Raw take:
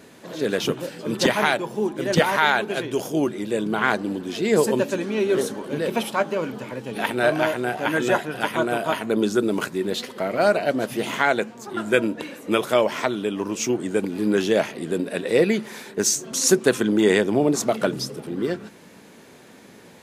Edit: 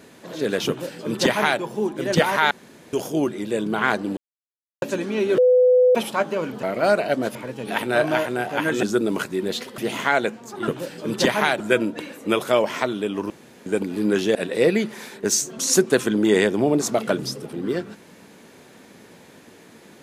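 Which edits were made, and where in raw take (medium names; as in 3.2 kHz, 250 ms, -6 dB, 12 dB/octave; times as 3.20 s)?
0.69–1.61 s: copy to 11.82 s
2.51–2.93 s: room tone
4.17–4.82 s: mute
5.38–5.95 s: bleep 502 Hz -11.5 dBFS
8.11–9.25 s: delete
10.20–10.92 s: move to 6.63 s
13.52–13.88 s: room tone
14.57–15.09 s: delete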